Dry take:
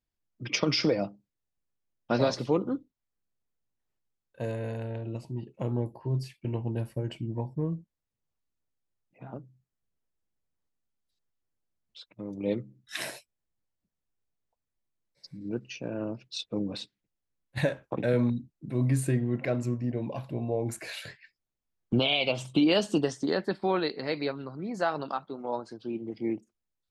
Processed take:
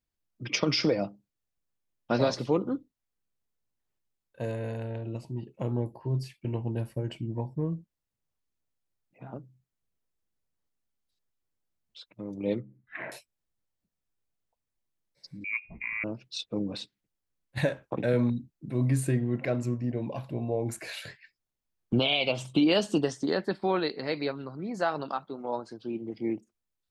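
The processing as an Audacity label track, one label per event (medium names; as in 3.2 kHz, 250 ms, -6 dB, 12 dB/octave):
12.600000	13.120000	elliptic low-pass 2.2 kHz, stop band 70 dB
15.440000	16.040000	frequency inversion carrier 2.6 kHz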